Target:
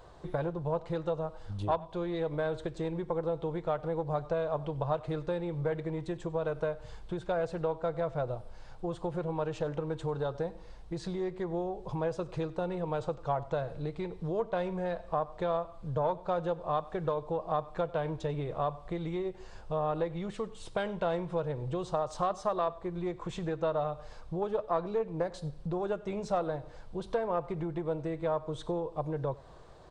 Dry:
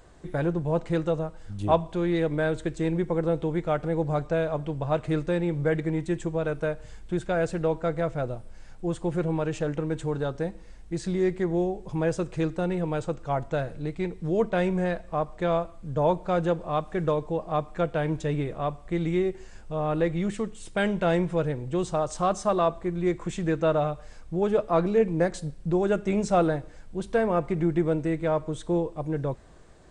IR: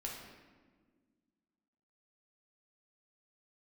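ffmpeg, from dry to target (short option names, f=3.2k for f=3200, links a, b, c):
-filter_complex "[0:a]aeval=exprs='0.355*(cos(1*acos(clip(val(0)/0.355,-1,1)))-cos(1*PI/2))+0.0562*(cos(2*acos(clip(val(0)/0.355,-1,1)))-cos(2*PI/2))+0.0316*(cos(3*acos(clip(val(0)/0.355,-1,1)))-cos(3*PI/2))':c=same,acompressor=threshold=-34dB:ratio=4,equalizer=f=125:t=o:w=1:g=4,equalizer=f=250:t=o:w=1:g=-5,equalizer=f=500:t=o:w=1:g=5,equalizer=f=1k:t=o:w=1:g=8,equalizer=f=2k:t=o:w=1:g=-4,equalizer=f=4k:t=o:w=1:g=6,equalizer=f=8k:t=o:w=1:g=-7,asplit=2[a][b];[b]aecho=0:1:96:0.0794[c];[a][c]amix=inputs=2:normalize=0"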